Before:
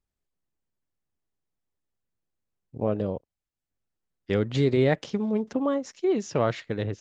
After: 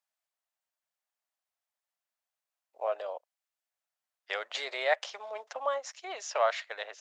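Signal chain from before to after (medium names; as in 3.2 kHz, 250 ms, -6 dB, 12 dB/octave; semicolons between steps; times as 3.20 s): elliptic high-pass 630 Hz, stop band 80 dB; trim +2 dB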